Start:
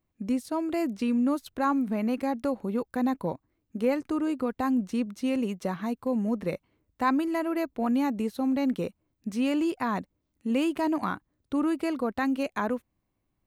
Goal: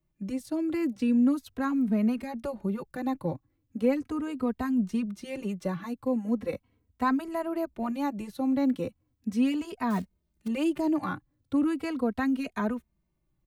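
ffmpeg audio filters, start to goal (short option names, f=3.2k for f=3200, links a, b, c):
-filter_complex "[0:a]acrossover=split=220|600|1600[a][b][c][d];[a]acontrast=77[e];[e][b][c][d]amix=inputs=4:normalize=0,asettb=1/sr,asplit=3[f][g][h];[f]atrim=end=9.904[i];[g]atrim=start=9.9:end=10.48,asetpts=PTS-STARTPTS,afade=t=in:d=0.004:c=qsin,afade=t=out:st=0.576:d=0.004:c=qsin,acrusher=bits=5:mode=log:mix=0:aa=0.000001[j];[h]atrim=start=10.476[k];[i][j]acrossfade=d=0.004:c1=hsin:c2=qsin[l];[l][k]acrossfade=d=0.004:c1=qsin:c2=hsin,asplit=2[m][n];[n]adelay=2.9,afreqshift=-0.38[o];[m][o]amix=inputs=2:normalize=1"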